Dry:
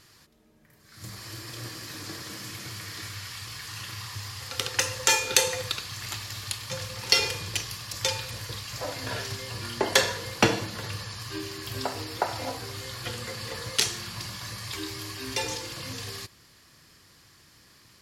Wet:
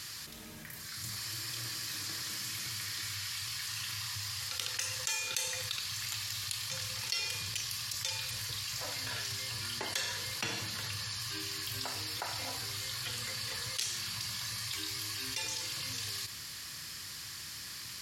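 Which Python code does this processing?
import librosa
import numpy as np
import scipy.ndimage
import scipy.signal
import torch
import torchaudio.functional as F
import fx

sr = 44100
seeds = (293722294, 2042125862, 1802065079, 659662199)

y = scipy.signal.sosfilt(scipy.signal.butter(2, 61.0, 'highpass', fs=sr, output='sos'), x)
y = fx.tone_stack(y, sr, knobs='5-5-5')
y = fx.env_flatten(y, sr, amount_pct=70)
y = y * 10.0 ** (-8.5 / 20.0)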